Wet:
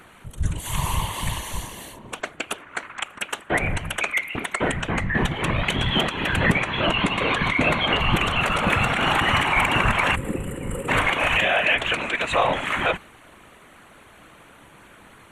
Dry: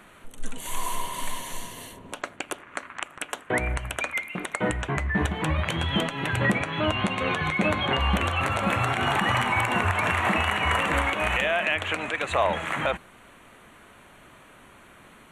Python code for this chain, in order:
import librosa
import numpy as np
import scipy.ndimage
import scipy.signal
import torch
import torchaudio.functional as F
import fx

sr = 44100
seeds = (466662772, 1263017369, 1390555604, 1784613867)

y = fx.whisperise(x, sr, seeds[0])
y = fx.spec_box(y, sr, start_s=10.15, length_s=0.74, low_hz=580.0, high_hz=7100.0, gain_db=-20)
y = fx.dynamic_eq(y, sr, hz=2900.0, q=1.1, threshold_db=-41.0, ratio=4.0, max_db=4)
y = y * librosa.db_to_amplitude(2.5)